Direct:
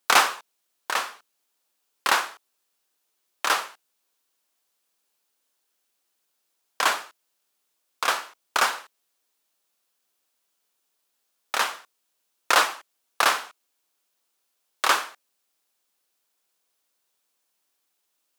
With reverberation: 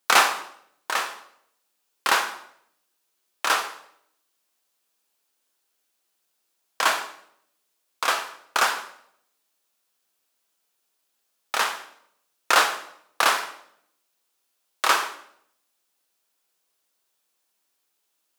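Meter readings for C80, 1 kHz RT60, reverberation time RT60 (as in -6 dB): 14.0 dB, 0.65 s, 0.70 s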